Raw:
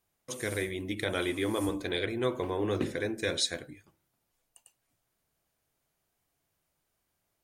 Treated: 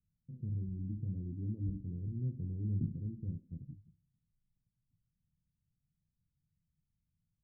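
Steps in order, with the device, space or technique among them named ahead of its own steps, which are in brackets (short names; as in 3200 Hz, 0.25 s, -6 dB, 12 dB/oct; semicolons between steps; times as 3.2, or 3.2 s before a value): the neighbour's flat through the wall (LPF 170 Hz 24 dB/oct; bell 180 Hz +5 dB 0.91 oct); gain +3 dB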